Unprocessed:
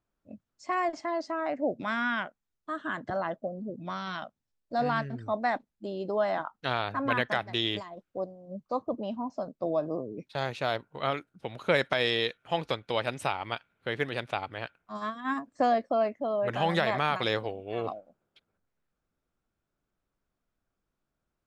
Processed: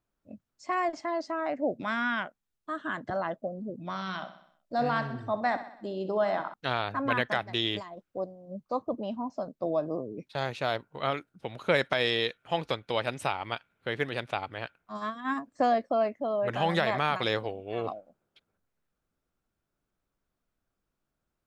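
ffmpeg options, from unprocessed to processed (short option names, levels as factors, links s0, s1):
-filter_complex "[0:a]asettb=1/sr,asplit=3[s0][s1][s2];[s0]atrim=end=3.884[s3];[s1]atrim=start=3.88:end=6.54,asetpts=PTS-STARTPTS,afade=t=in:d=0.004:c=qsin,afade=t=out:st=2.656:d=0.004:c=qsin,aecho=1:1:63|126|189|252|315|378:0.251|0.136|0.0732|0.0396|0.0214|0.0115,atrim=end_sample=117306[s4];[s2]atrim=start=6.536[s5];[s3][s4]acrossfade=d=0.004:c1=hsin:c2=qsin[s6];[s6][s5]acrossfade=d=0.004:c1=qsin:c2=hsin"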